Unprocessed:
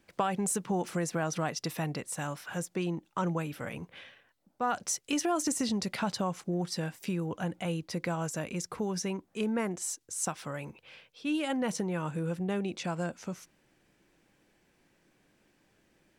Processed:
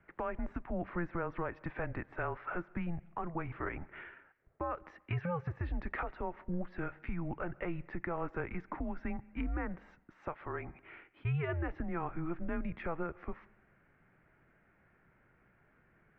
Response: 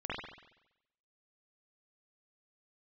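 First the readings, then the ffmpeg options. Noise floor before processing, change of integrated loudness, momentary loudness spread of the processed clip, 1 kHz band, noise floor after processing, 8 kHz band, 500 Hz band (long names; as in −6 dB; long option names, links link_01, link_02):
−70 dBFS, −6.5 dB, 8 LU, −5.5 dB, −69 dBFS, below −40 dB, −6.0 dB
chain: -filter_complex "[0:a]highpass=frequency=180:width_type=q:width=0.5412,highpass=frequency=180:width_type=q:width=1.307,lowpass=frequency=2100:width_type=q:width=0.5176,lowpass=frequency=2100:width_type=q:width=0.7071,lowpass=frequency=2100:width_type=q:width=1.932,afreqshift=-170,alimiter=level_in=4.5dB:limit=-24dB:level=0:latency=1:release=466,volume=-4.5dB,asplit=2[link_01][link_02];[1:a]atrim=start_sample=2205,adelay=87[link_03];[link_02][link_03]afir=irnorm=-1:irlink=0,volume=-27.5dB[link_04];[link_01][link_04]amix=inputs=2:normalize=0,crystalizer=i=5:c=0,volume=1dB"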